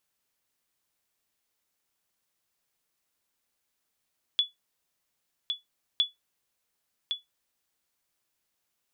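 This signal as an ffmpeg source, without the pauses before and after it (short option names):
-f lavfi -i "aevalsrc='0.168*(sin(2*PI*3420*mod(t,1.61))*exp(-6.91*mod(t,1.61)/0.16)+0.473*sin(2*PI*3420*max(mod(t,1.61)-1.11,0))*exp(-6.91*max(mod(t,1.61)-1.11,0)/0.16))':d=3.22:s=44100"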